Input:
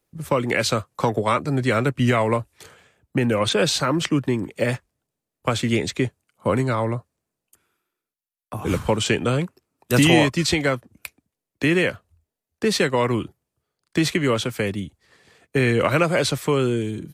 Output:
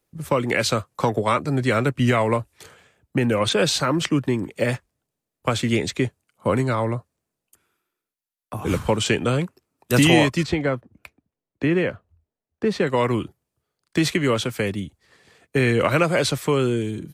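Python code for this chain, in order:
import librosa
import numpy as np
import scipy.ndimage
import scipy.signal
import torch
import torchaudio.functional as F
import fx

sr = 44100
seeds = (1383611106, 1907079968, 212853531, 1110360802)

y = fx.lowpass(x, sr, hz=1200.0, slope=6, at=(10.43, 12.87))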